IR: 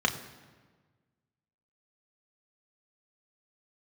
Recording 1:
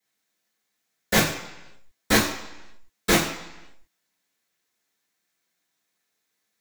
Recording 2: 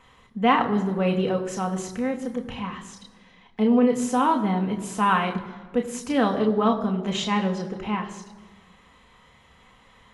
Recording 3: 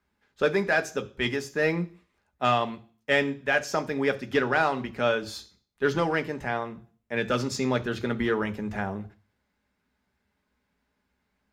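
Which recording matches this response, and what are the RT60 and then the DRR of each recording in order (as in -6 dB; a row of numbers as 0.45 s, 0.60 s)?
2; 0.95 s, 1.4 s, 0.40 s; -14.5 dB, 2.5 dB, 7.5 dB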